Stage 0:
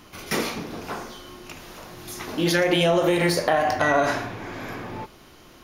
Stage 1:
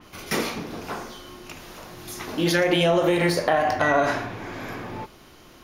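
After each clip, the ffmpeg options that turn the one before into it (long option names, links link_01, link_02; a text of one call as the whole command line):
ffmpeg -i in.wav -af "adynamicequalizer=threshold=0.0112:dfrequency=4100:dqfactor=0.7:tfrequency=4100:tqfactor=0.7:attack=5:release=100:ratio=0.375:range=2:mode=cutabove:tftype=highshelf" out.wav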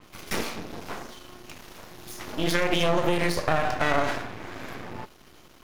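ffmpeg -i in.wav -af "aeval=exprs='max(val(0),0)':channel_layout=same" out.wav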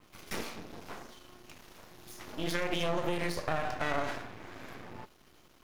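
ffmpeg -i in.wav -af "acrusher=bits=8:dc=4:mix=0:aa=0.000001,volume=-8.5dB" out.wav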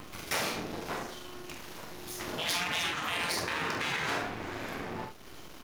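ffmpeg -i in.wav -af "aecho=1:1:45|70:0.473|0.266,acompressor=mode=upward:threshold=-47dB:ratio=2.5,afftfilt=real='re*lt(hypot(re,im),0.0501)':imag='im*lt(hypot(re,im),0.0501)':win_size=1024:overlap=0.75,volume=8dB" out.wav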